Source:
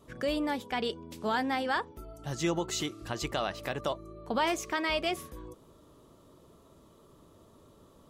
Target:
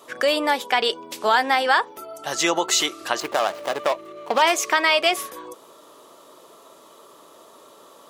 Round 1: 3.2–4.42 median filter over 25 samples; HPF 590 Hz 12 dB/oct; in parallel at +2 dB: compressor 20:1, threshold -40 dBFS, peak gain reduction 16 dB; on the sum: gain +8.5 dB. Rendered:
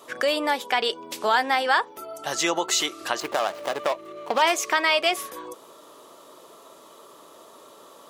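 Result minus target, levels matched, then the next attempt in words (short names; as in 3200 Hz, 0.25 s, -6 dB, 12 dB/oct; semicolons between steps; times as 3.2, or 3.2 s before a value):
compressor: peak gain reduction +8.5 dB
3.2–4.42 median filter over 25 samples; HPF 590 Hz 12 dB/oct; in parallel at +2 dB: compressor 20:1, threshold -31 dBFS, peak gain reduction 7 dB; on the sum: gain +8.5 dB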